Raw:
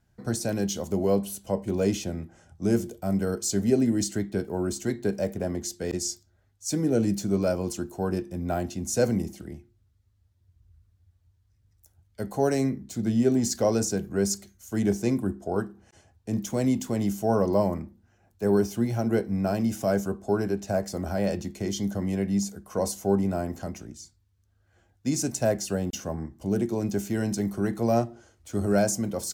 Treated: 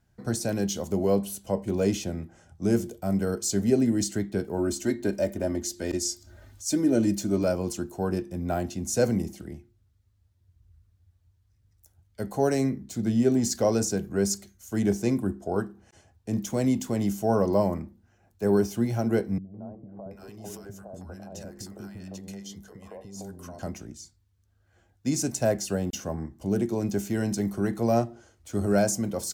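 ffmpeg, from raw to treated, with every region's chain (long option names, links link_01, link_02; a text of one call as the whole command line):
ffmpeg -i in.wav -filter_complex "[0:a]asettb=1/sr,asplit=3[link_01][link_02][link_03];[link_01]atrim=end=4.584[link_04];[link_02]atrim=start=4.58:end=7.44,asetpts=PTS-STARTPTS,afade=type=in:duration=0.004:curve=qsin,afade=type=out:start_time=2.856:duration=0.004:curve=qsin,aecho=1:1:3.3:0.57,atrim=end_sample=126126,acompressor=mode=upward:threshold=-34dB:ratio=2.5:attack=3.2:release=140:knee=2.83:detection=peak[link_05];[link_03]atrim=start=7.436[link_06];[link_04][link_05]acrossfade=duration=0.004:curve1=hsin:curve2=qsin[link_07];[link_07][link_06]acrossfade=duration=0.004:curve1=qsin:curve2=hsin,asettb=1/sr,asplit=3[link_08][link_09][link_10];[link_08]atrim=end=19.384[link_11];[link_09]atrim=start=19.38:end=23.59,asetpts=PTS-STARTPTS,afade=type=in:duration=0.004:curve=qsin,afade=type=out:start_time=4.206:duration=0.004:curve=qsin,bandreject=frequency=2200:width=16,acompressor=threshold=-35dB:ratio=12:attack=3.2:release=140:knee=1:detection=peak,acrossover=split=320|970[link_12][link_13][link_14];[link_13]adelay=160[link_15];[link_14]adelay=730[link_16];[link_12][link_15][link_16]amix=inputs=3:normalize=0,atrim=end_sample=185661[link_17];[link_10]atrim=start=23.586[link_18];[link_11][link_17]acrossfade=duration=0.004:curve1=hsin:curve2=qsin[link_19];[link_19][link_18]acrossfade=duration=0.004:curve1=qsin:curve2=hsin" out.wav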